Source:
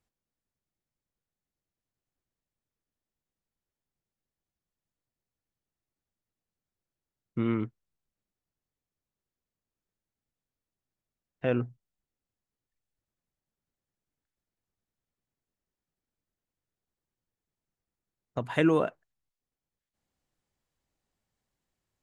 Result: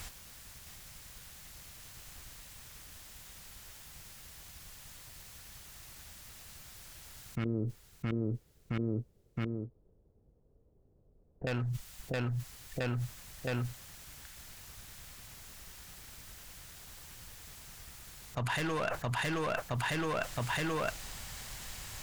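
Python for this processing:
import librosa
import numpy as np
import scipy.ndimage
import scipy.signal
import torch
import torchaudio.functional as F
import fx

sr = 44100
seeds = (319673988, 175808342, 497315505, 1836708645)

y = fx.peak_eq(x, sr, hz=320.0, db=-14.5, octaves=2.6)
y = fx.tube_stage(y, sr, drive_db=29.0, bias=0.65)
y = np.clip(y, -10.0 ** (-37.5 / 20.0), 10.0 ** (-37.5 / 20.0))
y = fx.ladder_lowpass(y, sr, hz=510.0, resonance_pct=55, at=(7.44, 11.47))
y = fx.echo_feedback(y, sr, ms=668, feedback_pct=30, wet_db=-10.0)
y = fx.env_flatten(y, sr, amount_pct=100)
y = y * 10.0 ** (6.0 / 20.0)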